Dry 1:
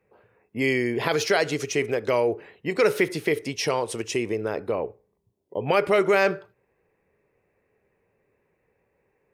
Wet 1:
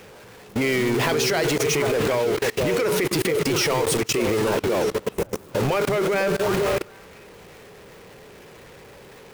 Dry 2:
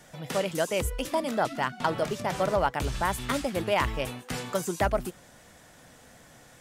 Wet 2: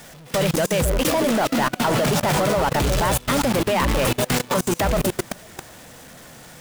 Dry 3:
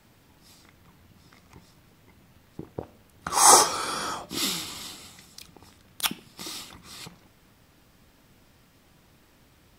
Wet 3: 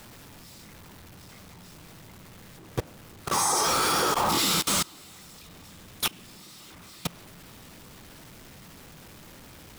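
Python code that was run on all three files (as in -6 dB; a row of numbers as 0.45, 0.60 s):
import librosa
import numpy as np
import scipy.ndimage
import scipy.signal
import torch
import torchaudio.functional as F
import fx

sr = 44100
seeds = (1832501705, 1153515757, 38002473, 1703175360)

y = x + 0.5 * 10.0 ** (-21.5 / 20.0) * np.sign(x)
y = fx.echo_stepped(y, sr, ms=249, hz=160.0, octaves=1.4, feedback_pct=70, wet_db=-1)
y = fx.level_steps(y, sr, step_db=24)
y = y * 10.0 ** (-9 / 20.0) / np.max(np.abs(y))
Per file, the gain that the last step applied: +3.0, +5.0, 0.0 dB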